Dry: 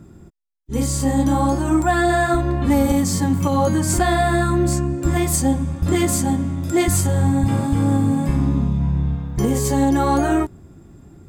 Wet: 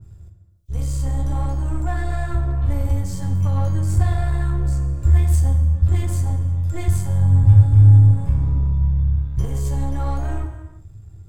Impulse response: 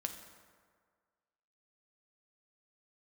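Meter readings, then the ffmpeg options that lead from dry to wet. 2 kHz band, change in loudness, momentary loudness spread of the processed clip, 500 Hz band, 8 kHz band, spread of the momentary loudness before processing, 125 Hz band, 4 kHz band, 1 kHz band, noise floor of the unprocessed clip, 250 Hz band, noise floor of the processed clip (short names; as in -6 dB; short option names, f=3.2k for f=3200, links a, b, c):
under -10 dB, 0.0 dB, 12 LU, -14.0 dB, -14.0 dB, 4 LU, +5.5 dB, under -10 dB, -12.5 dB, -45 dBFS, -13.5 dB, -43 dBFS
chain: -filter_complex "[0:a]aeval=exprs='if(lt(val(0),0),0.447*val(0),val(0))':c=same,lowshelf=f=150:t=q:w=3:g=13.5,acrossover=split=2900[a][b];[b]acompressor=mode=upward:threshold=-53dB:ratio=2.5[c];[a][c]amix=inputs=2:normalize=0[d];[1:a]atrim=start_sample=2205,afade=t=out:st=0.44:d=0.01,atrim=end_sample=19845[e];[d][e]afir=irnorm=-1:irlink=0,adynamicequalizer=threshold=0.0251:dfrequency=1600:dqfactor=0.7:tfrequency=1600:tqfactor=0.7:attack=5:release=100:ratio=0.375:range=2:mode=cutabove:tftype=highshelf,volume=-8.5dB"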